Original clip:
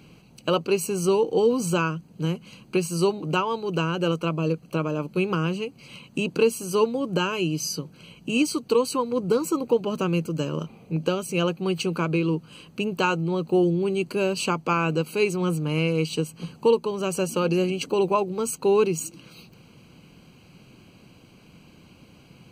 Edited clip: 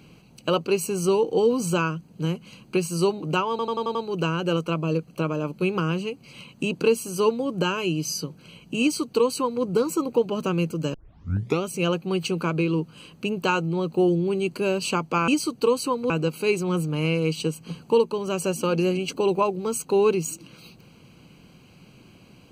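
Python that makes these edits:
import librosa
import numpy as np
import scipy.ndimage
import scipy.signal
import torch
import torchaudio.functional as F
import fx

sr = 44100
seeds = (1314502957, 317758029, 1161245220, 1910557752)

y = fx.edit(x, sr, fx.stutter(start_s=3.5, slice_s=0.09, count=6),
    fx.duplicate(start_s=8.36, length_s=0.82, to_s=14.83),
    fx.tape_start(start_s=10.49, length_s=0.68), tone=tone)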